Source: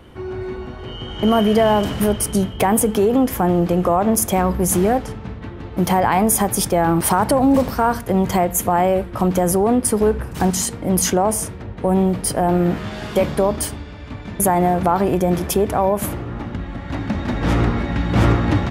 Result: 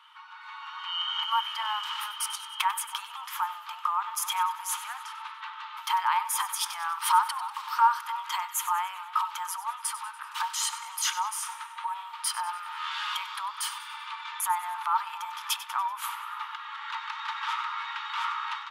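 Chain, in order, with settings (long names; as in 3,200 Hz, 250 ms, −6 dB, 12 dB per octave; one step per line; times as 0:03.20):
high-shelf EQ 2,800 Hz −9.5 dB
downward compressor 2.5 to 1, threshold −28 dBFS, peak gain reduction 11.5 dB
Chebyshev high-pass with heavy ripple 880 Hz, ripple 9 dB
on a send: echo with a time of its own for lows and highs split 1,400 Hz, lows 283 ms, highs 96 ms, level −14 dB
on the sum: automatic gain control gain up to 8 dB
level +4.5 dB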